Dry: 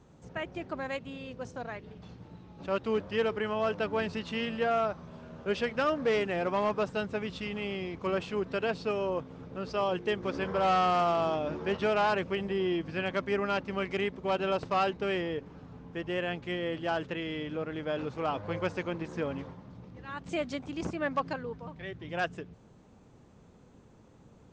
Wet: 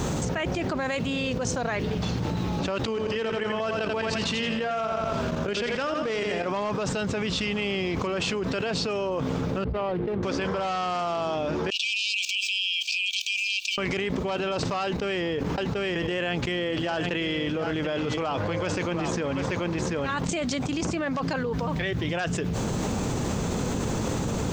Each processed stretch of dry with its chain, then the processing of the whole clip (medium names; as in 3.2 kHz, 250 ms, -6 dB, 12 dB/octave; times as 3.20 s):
2.85–6.46 s: level held to a coarse grid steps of 15 dB + feedback delay 85 ms, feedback 39%, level -8.5 dB
9.64–10.23 s: median filter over 25 samples + distance through air 410 m + three bands expanded up and down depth 100%
11.70–13.78 s: level held to a coarse grid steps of 21 dB + brick-wall FIR high-pass 2.3 kHz + transformer saturation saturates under 860 Hz
14.84–20.78 s: gate -44 dBFS, range -14 dB + delay 735 ms -13 dB
whole clip: treble shelf 4.5 kHz +11.5 dB; peak limiter -28.5 dBFS; level flattener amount 100%; trim +5.5 dB